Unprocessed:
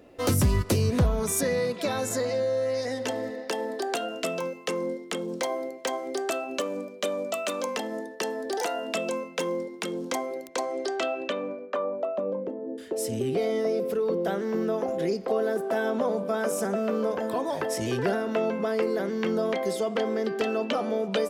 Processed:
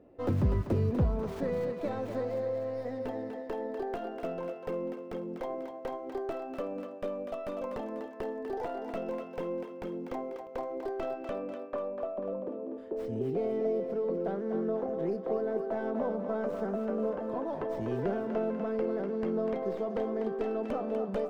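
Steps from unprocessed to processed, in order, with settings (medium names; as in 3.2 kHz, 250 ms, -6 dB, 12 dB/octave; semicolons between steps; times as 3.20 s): tracing distortion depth 0.45 ms; FFT filter 330 Hz 0 dB, 890 Hz -3 dB, 12 kHz -28 dB; thinning echo 246 ms, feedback 56%, high-pass 500 Hz, level -6 dB; trim -4.5 dB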